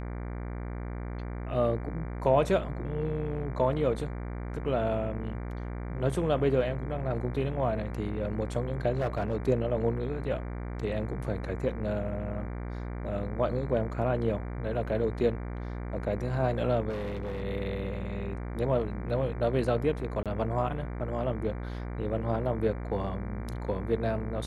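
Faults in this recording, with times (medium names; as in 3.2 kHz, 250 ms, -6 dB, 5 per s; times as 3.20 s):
buzz 60 Hz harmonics 39 -36 dBFS
8.97–9.37 s: clipped -24 dBFS
16.89–17.43 s: clipped -30.5 dBFS
20.23–20.26 s: dropout 27 ms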